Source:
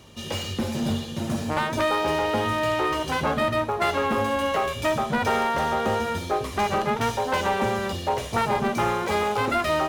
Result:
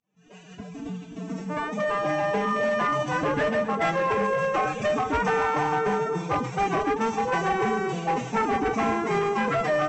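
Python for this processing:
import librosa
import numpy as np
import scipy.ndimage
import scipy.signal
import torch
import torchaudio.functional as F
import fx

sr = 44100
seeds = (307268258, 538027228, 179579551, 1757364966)

p1 = fx.fade_in_head(x, sr, length_s=2.65)
p2 = fx.peak_eq(p1, sr, hz=3900.0, db=-11.5, octaves=2.2)
p3 = fx.pitch_keep_formants(p2, sr, semitones=11.5)
p4 = np.clip(p3, -10.0 ** (-21.0 / 20.0), 10.0 ** (-21.0 / 20.0))
p5 = scipy.signal.sosfilt(scipy.signal.cheby1(6, 6, 7900.0, 'lowpass', fs=sr, output='sos'), p4)
p6 = p5 + fx.echo_feedback(p5, sr, ms=266, feedback_pct=51, wet_db=-15.5, dry=0)
y = p6 * 10.0 ** (7.0 / 20.0)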